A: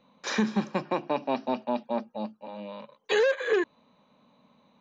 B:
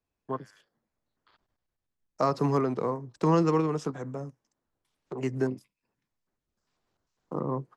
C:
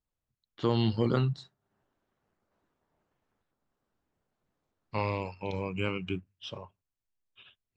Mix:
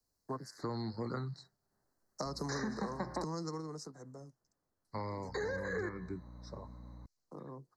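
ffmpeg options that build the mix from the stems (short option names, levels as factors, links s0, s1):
-filter_complex "[0:a]bandreject=f=76.51:t=h:w=4,bandreject=f=153.02:t=h:w=4,bandreject=f=229.53:t=h:w=4,bandreject=f=306.04:t=h:w=4,bandreject=f=382.55:t=h:w=4,bandreject=f=459.06:t=h:w=4,bandreject=f=535.57:t=h:w=4,bandreject=f=612.08:t=h:w=4,bandreject=f=688.59:t=h:w=4,bandreject=f=765.1:t=h:w=4,bandreject=f=841.61:t=h:w=4,bandreject=f=918.12:t=h:w=4,bandreject=f=994.63:t=h:w=4,bandreject=f=1071.14:t=h:w=4,bandreject=f=1147.65:t=h:w=4,bandreject=f=1224.16:t=h:w=4,bandreject=f=1300.67:t=h:w=4,bandreject=f=1377.18:t=h:w=4,bandreject=f=1453.69:t=h:w=4,bandreject=f=1530.2:t=h:w=4,bandreject=f=1606.71:t=h:w=4,bandreject=f=1683.22:t=h:w=4,bandreject=f=1759.73:t=h:w=4,bandreject=f=1836.24:t=h:w=4,bandreject=f=1912.75:t=h:w=4,bandreject=f=1989.26:t=h:w=4,bandreject=f=2065.77:t=h:w=4,bandreject=f=2142.28:t=h:w=4,bandreject=f=2218.79:t=h:w=4,bandreject=f=2295.3:t=h:w=4,bandreject=f=2371.81:t=h:w=4,bandreject=f=2448.32:t=h:w=4,bandreject=f=2524.83:t=h:w=4,bandreject=f=2601.34:t=h:w=4,bandreject=f=2677.85:t=h:w=4,bandreject=f=2754.36:t=h:w=4,acompressor=threshold=0.0282:ratio=2,aeval=exprs='val(0)+0.00316*(sin(2*PI*60*n/s)+sin(2*PI*2*60*n/s)/2+sin(2*PI*3*60*n/s)/3+sin(2*PI*4*60*n/s)/4+sin(2*PI*5*60*n/s)/5)':c=same,adelay=2250,volume=1.19,asplit=3[s0][s1][s2];[s0]atrim=end=3.24,asetpts=PTS-STARTPTS,afade=t=out:st=3.236:d=0.004:c=hsin[s3];[s1]atrim=start=3.24:end=5.28,asetpts=PTS-STARTPTS,volume=0[s4];[s2]atrim=start=5.28,asetpts=PTS-STARTPTS,afade=t=in:d=0.004:c=hsin[s5];[s3][s4][s5]concat=n=3:v=0:a=1[s6];[1:a]highshelf=f=3000:t=q:w=1.5:g=9.5,acompressor=threshold=0.0355:ratio=6,volume=0.841,afade=t=out:st=3.21:d=0.67:silence=0.237137[s7];[2:a]volume=0.596,asplit=2[s8][s9];[s9]apad=whole_len=342596[s10];[s7][s10]sidechaincompress=threshold=0.02:ratio=8:attack=40:release=1460[s11];[s6][s11][s8]amix=inputs=3:normalize=0,acrossover=split=150|330|710[s12][s13][s14][s15];[s12]acompressor=threshold=0.00398:ratio=4[s16];[s13]acompressor=threshold=0.00794:ratio=4[s17];[s14]acompressor=threshold=0.00398:ratio=4[s18];[s15]acompressor=threshold=0.01:ratio=4[s19];[s16][s17][s18][s19]amix=inputs=4:normalize=0,asuperstop=centerf=2900:order=12:qfactor=1.5"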